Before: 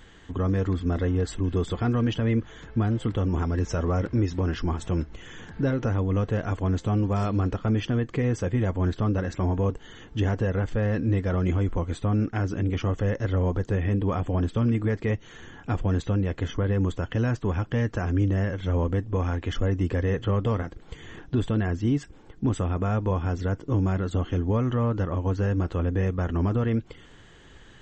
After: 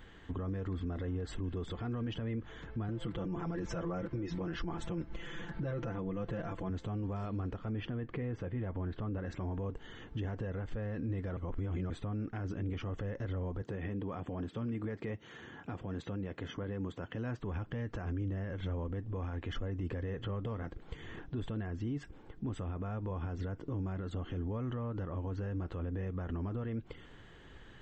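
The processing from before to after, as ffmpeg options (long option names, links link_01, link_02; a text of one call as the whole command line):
ffmpeg -i in.wav -filter_complex "[0:a]asettb=1/sr,asplit=3[link_01][link_02][link_03];[link_01]atrim=end=2.884[link_04];[link_02]atrim=start=2.88:end=6.7,asetpts=PTS-STARTPTS,afade=type=in:duration=0.004:curve=qsin,afade=type=out:start_time=3.816:duration=0.004:curve=qsin,aecho=1:1:5.9:0.97,atrim=end_sample=168462[link_05];[link_03]atrim=start=6.696[link_06];[link_04][link_05]acrossfade=duration=0.004:curve1=hsin:curve2=qsin[link_07];[link_07][link_06]acrossfade=duration=0.004:curve1=qsin:curve2=hsin,asettb=1/sr,asplit=3[link_08][link_09][link_10];[link_08]atrim=end=7.724[link_11];[link_09]atrim=start=7.72:end=9.26,asetpts=PTS-STARTPTS,afade=type=in:duration=0.004:curve=qsin,afade=type=out:start_time=1.536:duration=0.004:curve=qsin,lowpass=3200[link_12];[link_10]atrim=start=9.256[link_13];[link_11][link_12]acrossfade=duration=0.004:curve1=hsin:curve2=qsin[link_14];[link_14][link_13]acrossfade=duration=0.004:curve1=qsin:curve2=hsin,asettb=1/sr,asplit=3[link_15][link_16][link_17];[link_15]atrim=end=13.624[link_18];[link_16]atrim=start=13.62:end=17.4,asetpts=PTS-STARTPTS,afade=type=in:duration=0.004:curve=qsin,afade=type=out:start_time=3.776:duration=0.004:curve=qsin,highpass=120[link_19];[link_17]atrim=start=17.396[link_20];[link_18][link_19]acrossfade=duration=0.004:curve1=hsin:curve2=qsin[link_21];[link_21][link_20]acrossfade=duration=0.004:curve1=qsin:curve2=hsin,asplit=3[link_22][link_23][link_24];[link_22]atrim=end=11.372[link_25];[link_23]atrim=start=11.368:end=11.902,asetpts=PTS-STARTPTS,areverse[link_26];[link_24]atrim=start=11.898[link_27];[link_25][link_26]acrossfade=duration=0.004:curve1=hsin:curve2=hsin[link_28];[link_28][link_27]acrossfade=duration=0.004:curve1=hsin:curve2=hsin,equalizer=frequency=7000:width_type=o:width=1.3:gain=-10,alimiter=level_in=2.5dB:limit=-24dB:level=0:latency=1:release=90,volume=-2.5dB,volume=-3.5dB" out.wav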